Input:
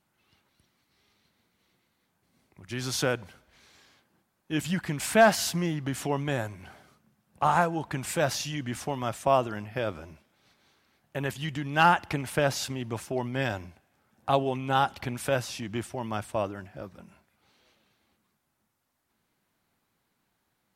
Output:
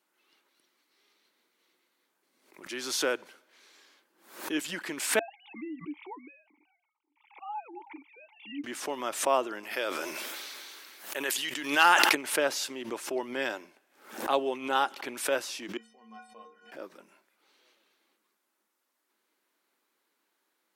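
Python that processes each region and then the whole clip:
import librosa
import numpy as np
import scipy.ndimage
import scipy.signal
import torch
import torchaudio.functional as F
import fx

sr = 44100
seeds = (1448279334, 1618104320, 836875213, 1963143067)

y = fx.chain(x, sr, fx.sine_speech(),
    fx.vowel_filter(vowel='u'),
    fx.high_shelf(hz=2300.0, db=8.5), at=(5.19, 8.64))
y = fx.chain(y, sr, fx.tilt_eq(slope=2.5),
    fx.sustainer(db_per_s=20.0), at=(9.63, 12.15))
y = fx.chain(y, sr, fx.lowpass(hz=6500.0, slope=12),
    fx.stiff_resonator(f0_hz=220.0, decay_s=0.52, stiffness=0.03), at=(15.77, 16.72))
y = scipy.signal.sosfilt(scipy.signal.cheby1(3, 1.0, 320.0, 'highpass', fs=sr, output='sos'), y)
y = fx.peak_eq(y, sr, hz=730.0, db=-5.5, octaves=0.29)
y = fx.pre_swell(y, sr, db_per_s=110.0)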